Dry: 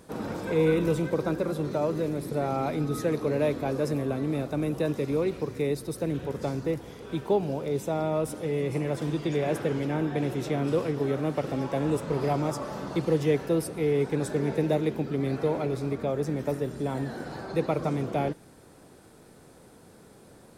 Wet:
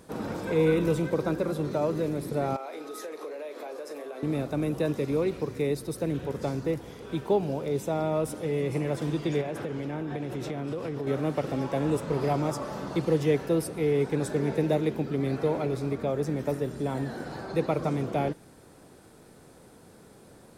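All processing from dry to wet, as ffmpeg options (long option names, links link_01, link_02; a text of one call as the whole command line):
ffmpeg -i in.wav -filter_complex "[0:a]asettb=1/sr,asplit=3[link_01][link_02][link_03];[link_01]atrim=end=2.564[link_04];[link_02]atrim=start=2.56:end=4.23,asetpts=PTS-STARTPTS,afade=type=in:duration=0.004:curve=qsin,afade=type=out:start_time=1.666:duration=0.004:curve=qsin,highpass=frequency=390:width=0.5412,highpass=frequency=390:width=1.3066,acompressor=threshold=-35dB:ratio=6:attack=3.2:release=140:knee=1:detection=peak,asplit=2[link_05][link_06];[link_06]adelay=39,volume=-10dB[link_07];[link_05][link_07]amix=inputs=2:normalize=0,atrim=end_sample=73647[link_08];[link_03]atrim=start=4.226[link_09];[link_04][link_08]acrossfade=duration=0.004:curve1=hsin:curve2=qsin[link_10];[link_10][link_09]acrossfade=duration=0.004:curve1=qsin:curve2=hsin,asettb=1/sr,asplit=3[link_11][link_12][link_13];[link_11]atrim=end=9.414[link_14];[link_12]atrim=start=9.41:end=11.07,asetpts=PTS-STARTPTS,afade=type=in:duration=0.004:curve=qsin,afade=type=out:start_time=1.656:duration=0.004:curve=qsin,highshelf=frequency=5900:gain=-4.5,acompressor=threshold=-28dB:ratio=10:attack=3.2:release=140:knee=1:detection=peak[link_15];[link_13]atrim=start=11.066[link_16];[link_14][link_15]acrossfade=duration=0.004:curve1=hsin:curve2=qsin[link_17];[link_17][link_16]acrossfade=duration=0.004:curve1=qsin:curve2=hsin" out.wav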